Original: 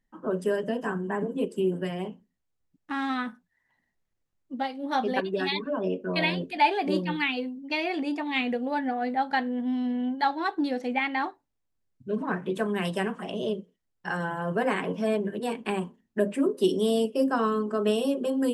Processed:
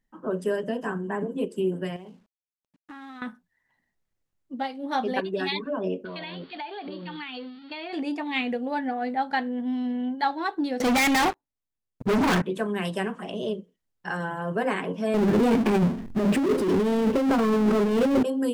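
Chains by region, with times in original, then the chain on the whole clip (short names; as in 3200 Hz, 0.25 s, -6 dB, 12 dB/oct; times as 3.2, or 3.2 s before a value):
1.96–3.22 companded quantiser 6-bit + compressor 12:1, threshold -39 dBFS + air absorption 52 m
6.05–7.93 switching spikes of -27.5 dBFS + rippled Chebyshev low-pass 4600 Hz, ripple 6 dB + compressor 10:1, threshold -32 dBFS
10.8–12.42 sample leveller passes 5 + hard clip -20 dBFS
15.14–18.23 tilt -3.5 dB/oct + negative-ratio compressor -27 dBFS + power-law curve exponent 0.5
whole clip: dry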